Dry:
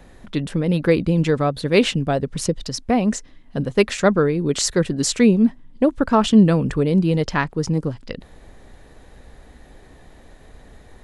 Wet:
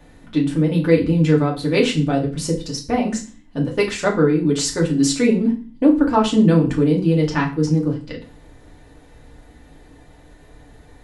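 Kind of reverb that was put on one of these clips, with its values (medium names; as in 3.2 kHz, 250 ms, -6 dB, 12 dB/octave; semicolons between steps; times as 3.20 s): FDN reverb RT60 0.36 s, low-frequency decay 1.4×, high-frequency decay 0.95×, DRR -2.5 dB; trim -5 dB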